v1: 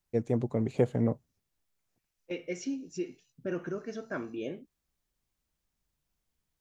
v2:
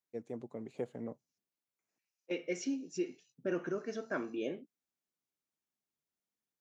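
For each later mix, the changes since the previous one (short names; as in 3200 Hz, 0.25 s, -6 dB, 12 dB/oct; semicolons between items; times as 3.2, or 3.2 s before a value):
first voice -12.0 dB; master: add HPF 210 Hz 12 dB/oct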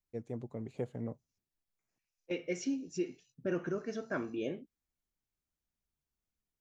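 master: remove HPF 210 Hz 12 dB/oct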